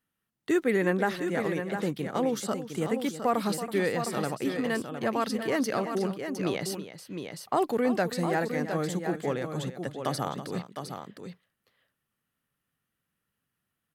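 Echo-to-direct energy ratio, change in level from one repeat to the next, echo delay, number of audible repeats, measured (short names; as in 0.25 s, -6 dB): -6.5 dB, no steady repeat, 0.327 s, 2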